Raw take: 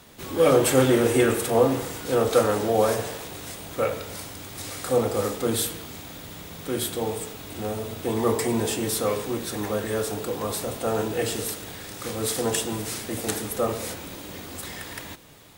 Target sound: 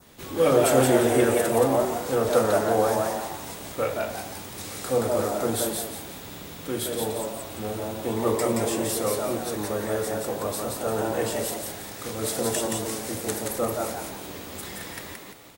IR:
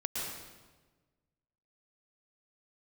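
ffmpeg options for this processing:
-filter_complex "[0:a]adynamicequalizer=threshold=0.00631:dfrequency=3000:dqfactor=1.1:tfrequency=3000:tqfactor=1.1:attack=5:release=100:ratio=0.375:range=2:mode=cutabove:tftype=bell,asplit=2[a][b];[b]asplit=5[c][d][e][f][g];[c]adelay=174,afreqshift=110,volume=-3dB[h];[d]adelay=348,afreqshift=220,volume=-12.1dB[i];[e]adelay=522,afreqshift=330,volume=-21.2dB[j];[f]adelay=696,afreqshift=440,volume=-30.4dB[k];[g]adelay=870,afreqshift=550,volume=-39.5dB[l];[h][i][j][k][l]amix=inputs=5:normalize=0[m];[a][m]amix=inputs=2:normalize=0,volume=-2dB"

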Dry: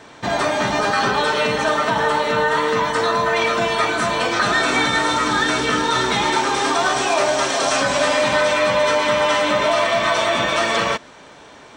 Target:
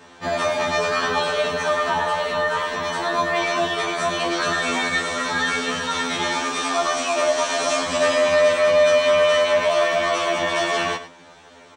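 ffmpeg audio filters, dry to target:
-filter_complex "[0:a]asplit=2[a][b];[b]aecho=0:1:101:0.211[c];[a][c]amix=inputs=2:normalize=0,afftfilt=real='re*2*eq(mod(b,4),0)':imag='im*2*eq(mod(b,4),0)':win_size=2048:overlap=0.75,volume=-1.5dB"

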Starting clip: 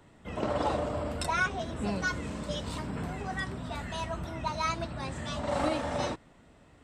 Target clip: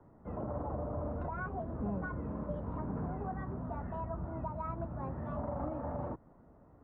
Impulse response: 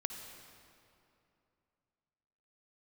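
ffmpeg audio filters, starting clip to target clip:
-filter_complex "[0:a]lowpass=f=1.2k:w=0.5412,lowpass=f=1.2k:w=1.3066,acrossover=split=190[a][b];[b]alimiter=level_in=6dB:limit=-24dB:level=0:latency=1:release=296,volume=-6dB[c];[a][c]amix=inputs=2:normalize=0,volume=-1.5dB"

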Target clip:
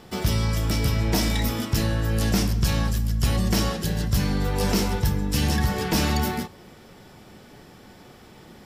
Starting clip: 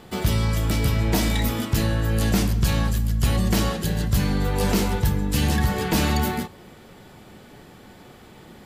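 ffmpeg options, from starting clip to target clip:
-af "equalizer=f=5.4k:w=6.6:g=9,volume=-1.5dB"

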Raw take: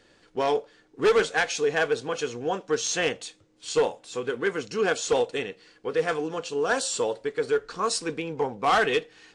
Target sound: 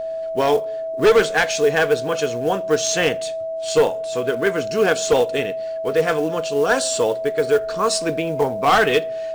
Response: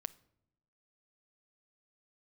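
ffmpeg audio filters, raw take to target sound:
-filter_complex "[0:a]acrusher=bits=6:mode=log:mix=0:aa=0.000001,aeval=exprs='val(0)+0.0316*sin(2*PI*650*n/s)':c=same,asplit=2[a][b];[1:a]atrim=start_sample=2205,lowshelf=f=210:g=8.5[c];[b][c]afir=irnorm=-1:irlink=0,volume=2.5dB[d];[a][d]amix=inputs=2:normalize=0"

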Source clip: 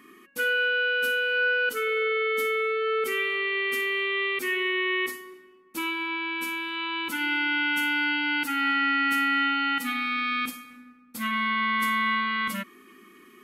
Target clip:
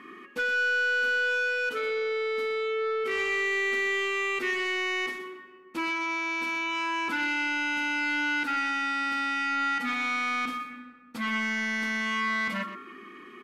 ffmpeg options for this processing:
-filter_complex "[0:a]aemphasis=mode=reproduction:type=75fm,bandreject=f=137.4:t=h:w=4,bandreject=f=274.8:t=h:w=4,bandreject=f=412.2:t=h:w=4,bandreject=f=549.6:t=h:w=4,bandreject=f=687:t=h:w=4,bandreject=f=824.4:t=h:w=4,bandreject=f=961.8:t=h:w=4,bandreject=f=1.0992k:t=h:w=4,bandreject=f=1.2366k:t=h:w=4,bandreject=f=1.374k:t=h:w=4,bandreject=f=1.5114k:t=h:w=4,bandreject=f=1.6488k:t=h:w=4,bandreject=f=1.7862k:t=h:w=4,bandreject=f=1.9236k:t=h:w=4,acompressor=threshold=-28dB:ratio=4,asoftclip=type=tanh:threshold=-29.5dB,asplit=2[a][b];[b]highpass=f=720:p=1,volume=6dB,asoftclip=type=tanh:threshold=-29.5dB[c];[a][c]amix=inputs=2:normalize=0,lowpass=f=3.6k:p=1,volume=-6dB,aecho=1:1:123:0.266,volume=6.5dB"

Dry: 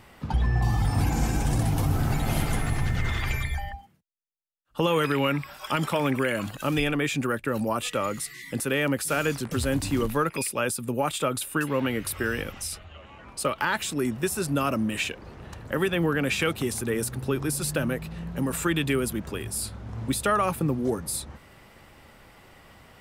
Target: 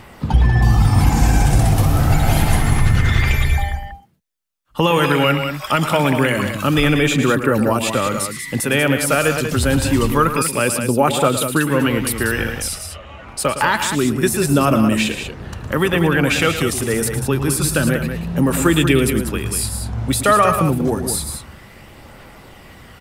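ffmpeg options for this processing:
-af "aphaser=in_gain=1:out_gain=1:delay=1.7:decay=0.27:speed=0.27:type=triangular,aecho=1:1:110.8|189.5:0.282|0.398,volume=8.5dB"

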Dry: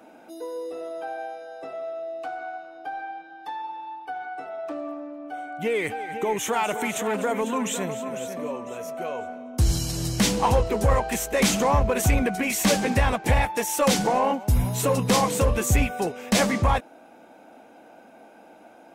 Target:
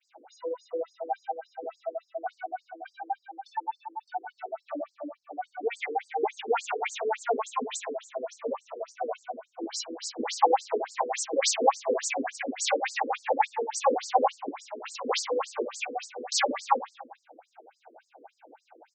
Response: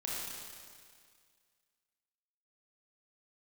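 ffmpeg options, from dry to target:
-filter_complex "[0:a]agate=range=-33dB:threshold=-47dB:ratio=3:detection=peak,equalizer=f=800:w=6.9:g=8,asplit=2[a][b];[b]adelay=24,volume=-9dB[c];[a][c]amix=inputs=2:normalize=0,asplit=2[d][e];[1:a]atrim=start_sample=2205,afade=t=out:st=0.44:d=0.01,atrim=end_sample=19845[f];[e][f]afir=irnorm=-1:irlink=0,volume=-12dB[g];[d][g]amix=inputs=2:normalize=0,afftfilt=real='re*between(b*sr/1024,350*pow(6200/350,0.5+0.5*sin(2*PI*3.5*pts/sr))/1.41,350*pow(6200/350,0.5+0.5*sin(2*PI*3.5*pts/sr))*1.41)':imag='im*between(b*sr/1024,350*pow(6200/350,0.5+0.5*sin(2*PI*3.5*pts/sr))/1.41,350*pow(6200/350,0.5+0.5*sin(2*PI*3.5*pts/sr))*1.41)':win_size=1024:overlap=0.75"

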